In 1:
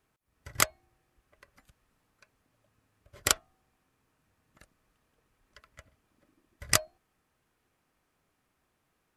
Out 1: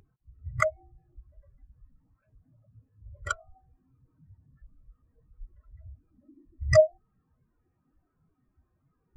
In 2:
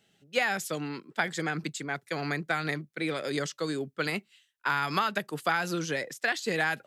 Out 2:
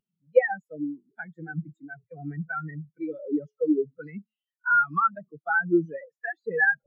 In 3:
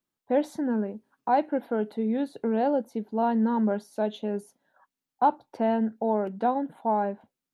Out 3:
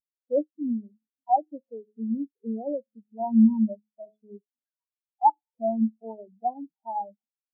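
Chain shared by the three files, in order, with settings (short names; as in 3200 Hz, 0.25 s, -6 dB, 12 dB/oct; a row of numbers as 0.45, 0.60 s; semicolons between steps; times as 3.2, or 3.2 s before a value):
zero-crossing step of -31.5 dBFS; de-hum 106.9 Hz, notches 8; spectral expander 4:1; match loudness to -27 LUFS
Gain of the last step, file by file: -3.0, +6.0, +1.0 dB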